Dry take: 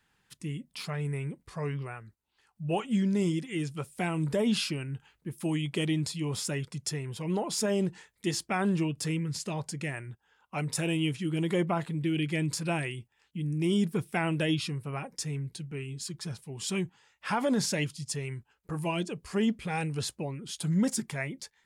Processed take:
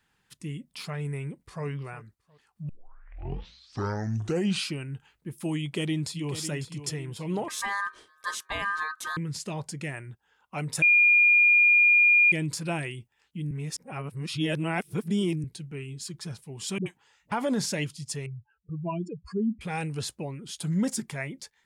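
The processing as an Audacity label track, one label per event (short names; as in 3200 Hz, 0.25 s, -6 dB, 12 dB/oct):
1.240000	1.650000	echo throw 0.36 s, feedback 25%, level -15 dB
2.690000	2.690000	tape start 2.03 s
5.600000	6.350000	echo throw 0.55 s, feedback 45%, level -11 dB
7.480000	9.170000	ring modulator 1400 Hz
10.820000	12.320000	bleep 2420 Hz -15.5 dBFS
13.510000	15.440000	reverse
16.780000	17.320000	dispersion highs, late by 80 ms, half as late at 380 Hz
18.260000	19.610000	spectral contrast raised exponent 2.8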